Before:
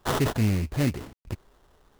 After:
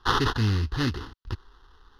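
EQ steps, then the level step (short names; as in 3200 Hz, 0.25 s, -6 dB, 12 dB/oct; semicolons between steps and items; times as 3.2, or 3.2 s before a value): LPF 6000 Hz 12 dB/oct; bell 170 Hz -14 dB 1.5 oct; fixed phaser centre 2300 Hz, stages 6; +8.5 dB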